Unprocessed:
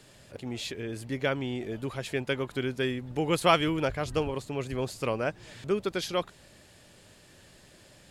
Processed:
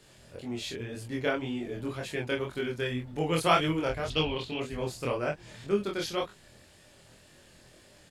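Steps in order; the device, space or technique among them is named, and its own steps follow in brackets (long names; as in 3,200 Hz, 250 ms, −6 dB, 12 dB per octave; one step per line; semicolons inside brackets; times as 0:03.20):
double-tracked vocal (double-tracking delay 25 ms −3 dB; chorus effect 1.9 Hz, delay 19.5 ms, depth 5.7 ms)
0:04.10–0:04.60: drawn EQ curve 1,700 Hz 0 dB, 3,300 Hz +15 dB, 7,700 Hz −9 dB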